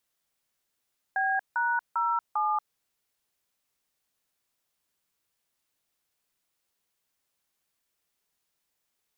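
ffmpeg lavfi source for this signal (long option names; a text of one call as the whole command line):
ffmpeg -f lavfi -i "aevalsrc='0.0473*clip(min(mod(t,0.398),0.234-mod(t,0.398))/0.002,0,1)*(eq(floor(t/0.398),0)*(sin(2*PI*770*mod(t,0.398))+sin(2*PI*1633*mod(t,0.398)))+eq(floor(t/0.398),1)*(sin(2*PI*941*mod(t,0.398))+sin(2*PI*1477*mod(t,0.398)))+eq(floor(t/0.398),2)*(sin(2*PI*941*mod(t,0.398))+sin(2*PI*1336*mod(t,0.398)))+eq(floor(t/0.398),3)*(sin(2*PI*852*mod(t,0.398))+sin(2*PI*1209*mod(t,0.398))))':duration=1.592:sample_rate=44100" out.wav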